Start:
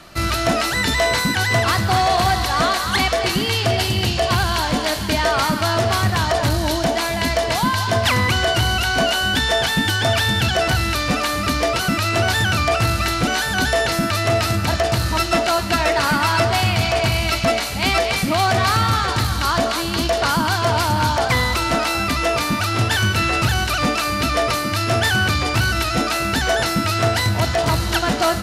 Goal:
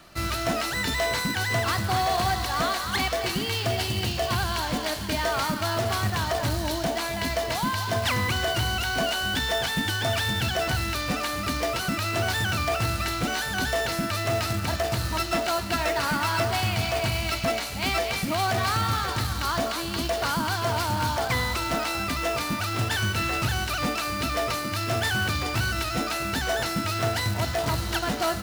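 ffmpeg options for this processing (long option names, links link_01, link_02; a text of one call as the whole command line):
ffmpeg -i in.wav -af "acrusher=bits=3:mode=log:mix=0:aa=0.000001,volume=-8dB" out.wav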